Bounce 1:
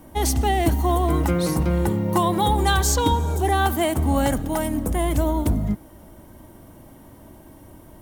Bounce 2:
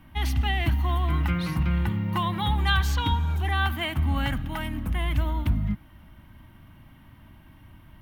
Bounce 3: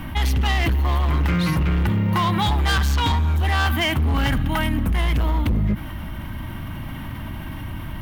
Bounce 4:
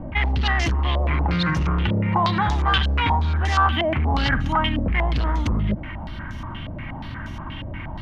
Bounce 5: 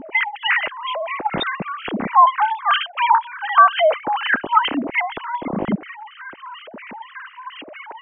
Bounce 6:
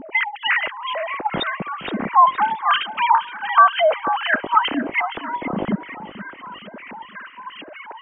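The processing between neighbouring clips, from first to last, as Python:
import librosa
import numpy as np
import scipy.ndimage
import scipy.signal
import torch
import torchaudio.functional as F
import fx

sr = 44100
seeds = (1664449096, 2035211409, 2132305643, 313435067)

y1 = fx.curve_eq(x, sr, hz=(140.0, 250.0, 450.0, 1200.0, 2800.0, 7800.0, 13000.0), db=(0, -6, -19, -1, 5, -20, -11))
y1 = F.gain(torch.from_numpy(y1), -1.5).numpy()
y2 = np.clip(10.0 ** (23.5 / 20.0) * y1, -1.0, 1.0) / 10.0 ** (23.5 / 20.0)
y2 = fx.env_flatten(y2, sr, amount_pct=50)
y2 = F.gain(torch.from_numpy(y2), 6.5).numpy()
y3 = fx.filter_held_lowpass(y2, sr, hz=8.4, low_hz=580.0, high_hz=6200.0)
y3 = F.gain(torch.from_numpy(y3), -2.0).numpy()
y4 = fx.sine_speech(y3, sr)
y4 = F.gain(torch.from_numpy(y4), 1.0).numpy()
y5 = fx.echo_feedback(y4, sr, ms=468, feedback_pct=43, wet_db=-14.5)
y5 = F.gain(torch.from_numpy(y5), -1.0).numpy()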